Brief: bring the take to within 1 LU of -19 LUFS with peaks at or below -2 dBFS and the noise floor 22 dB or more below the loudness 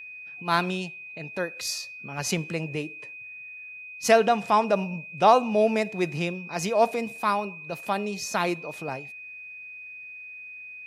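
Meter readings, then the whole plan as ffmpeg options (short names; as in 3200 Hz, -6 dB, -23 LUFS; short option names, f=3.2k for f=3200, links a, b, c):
steady tone 2500 Hz; tone level -39 dBFS; loudness -26.0 LUFS; peak -5.5 dBFS; loudness target -19.0 LUFS
-> -af "bandreject=f=2.5k:w=30"
-af "volume=7dB,alimiter=limit=-2dB:level=0:latency=1"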